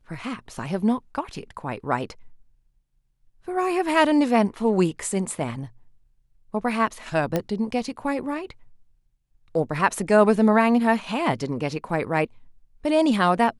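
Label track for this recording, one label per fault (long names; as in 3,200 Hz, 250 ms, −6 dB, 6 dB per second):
7.360000	7.360000	click −10 dBFS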